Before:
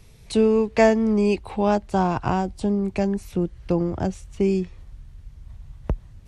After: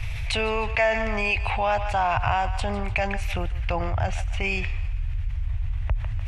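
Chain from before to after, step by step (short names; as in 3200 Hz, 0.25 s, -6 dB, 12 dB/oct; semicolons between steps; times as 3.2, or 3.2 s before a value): EQ curve 110 Hz 0 dB, 180 Hz -28 dB, 390 Hz -26 dB, 680 Hz -5 dB, 1100 Hz -6 dB, 2500 Hz +4 dB, 4200 Hz -10 dB, 9400 Hz -16 dB; on a send: thinning echo 0.149 s, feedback 49%, high-pass 600 Hz, level -18 dB; on the sum: fast leveller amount 70%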